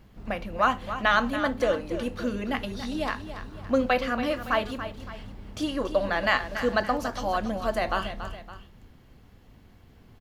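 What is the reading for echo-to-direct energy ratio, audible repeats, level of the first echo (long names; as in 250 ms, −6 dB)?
−10.0 dB, 2, −11.0 dB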